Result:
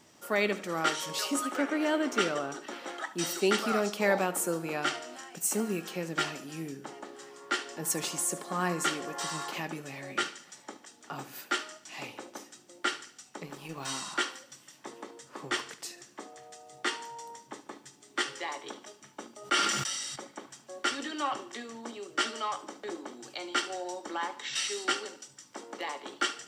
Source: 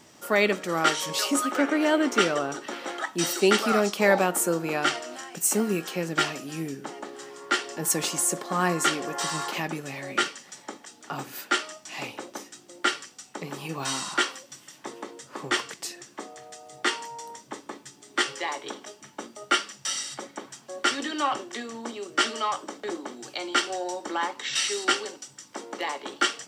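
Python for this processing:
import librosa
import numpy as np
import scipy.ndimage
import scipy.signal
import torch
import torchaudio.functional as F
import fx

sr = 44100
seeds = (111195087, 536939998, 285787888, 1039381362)

y = fx.law_mismatch(x, sr, coded='A', at=(13.45, 13.88), fade=0.02)
y = fx.echo_feedback(y, sr, ms=73, feedback_pct=46, wet_db=-17.0)
y = fx.sustainer(y, sr, db_per_s=29.0, at=(19.36, 20.16))
y = y * librosa.db_to_amplitude(-6.0)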